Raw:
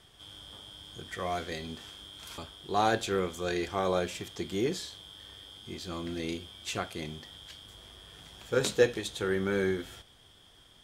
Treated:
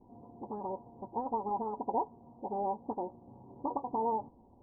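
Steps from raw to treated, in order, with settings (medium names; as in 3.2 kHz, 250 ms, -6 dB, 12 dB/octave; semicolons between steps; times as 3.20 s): delay that grows with frequency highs late, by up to 442 ms; compression 5:1, threshold -32 dBFS, peak gain reduction 13 dB; speed mistake 33 rpm record played at 78 rpm; rippled Chebyshev low-pass 1 kHz, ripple 3 dB; trim +7 dB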